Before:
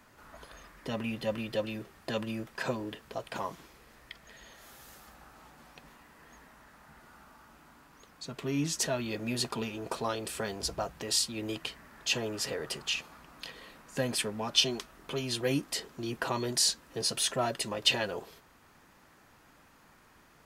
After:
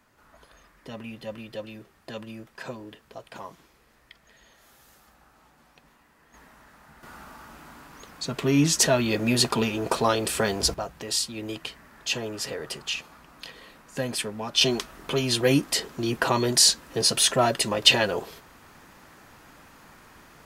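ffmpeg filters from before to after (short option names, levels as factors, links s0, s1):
-af "asetnsamples=n=441:p=0,asendcmd='6.34 volume volume 3dB;7.03 volume volume 10.5dB;10.74 volume volume 2dB;14.61 volume volume 9dB',volume=0.631"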